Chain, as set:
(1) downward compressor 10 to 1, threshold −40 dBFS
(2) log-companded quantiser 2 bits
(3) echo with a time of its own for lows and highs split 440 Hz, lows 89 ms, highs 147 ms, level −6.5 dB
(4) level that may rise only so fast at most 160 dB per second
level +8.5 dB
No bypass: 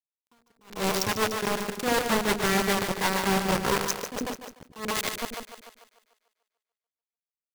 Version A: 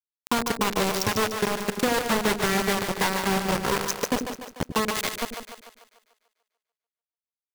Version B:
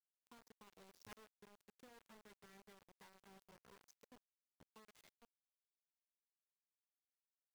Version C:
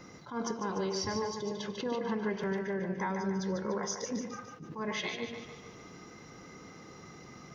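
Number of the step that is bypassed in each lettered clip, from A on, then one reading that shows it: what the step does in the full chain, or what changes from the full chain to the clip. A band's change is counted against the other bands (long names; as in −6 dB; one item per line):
4, change in momentary loudness spread −5 LU
3, change in momentary loudness spread −5 LU
2, change in crest factor −4.0 dB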